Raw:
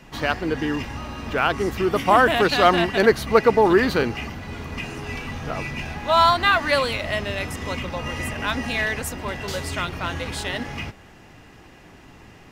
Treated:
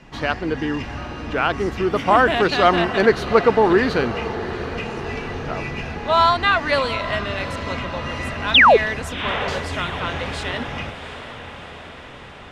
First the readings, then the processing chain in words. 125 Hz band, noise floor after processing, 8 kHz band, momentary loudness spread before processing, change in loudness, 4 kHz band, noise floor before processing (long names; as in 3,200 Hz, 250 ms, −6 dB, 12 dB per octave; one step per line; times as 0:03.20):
+1.5 dB, −39 dBFS, −5.0 dB, 15 LU, +2.0 dB, +4.0 dB, −47 dBFS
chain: high-frequency loss of the air 66 metres
sound drawn into the spectrogram fall, 0:08.54–0:08.77, 380–4,000 Hz −11 dBFS
on a send: feedback delay with all-pass diffusion 736 ms, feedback 63%, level −13 dB
on the sum: level +1 dB